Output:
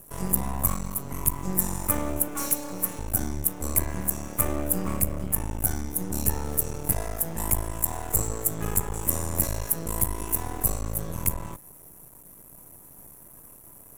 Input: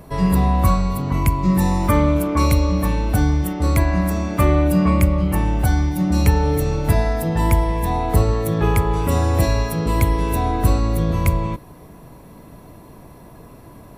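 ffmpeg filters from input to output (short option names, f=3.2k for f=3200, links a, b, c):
-filter_complex "[0:a]asettb=1/sr,asplit=3[a][b][c];[a]atrim=end=2.284[d];[b]atrim=start=2.28:end=2.99,asetpts=PTS-STARTPTS,afade=t=in:d=0.004:c=qsin,afade=t=out:st=0.706:d=0.004:c=qsin,highpass=f=170:w=0.5412,highpass=f=170:w=1.3066[e];[c]atrim=start=2.986[f];[d][e]acrossfade=d=0.004:c1=hsin:c2=qsin[g];[g][f]acrossfade=d=0.004:c1=qsin:c2=hsin,asettb=1/sr,asplit=3[h][i][j];[h]atrim=end=7.644[k];[i]atrim=start=7.64:end=9.08,asetpts=PTS-STARTPTS,afade=t=in:d=0.004:c=qsin,afade=t=out:st=1.436:d=0.004:c=qsin,equalizer=f=7.5k:w=6:g=10.5[l];[j]atrim=start=9.076[m];[k][l]acrossfade=d=0.004:c1=hsin:c2=qsin[n];[n][m]acrossfade=d=0.004:c1=qsin:c2=hsin,aeval=exprs='max(val(0),0)':c=same,aexciter=amount=8.7:drive=7:freq=6.5k,volume=-9.5dB"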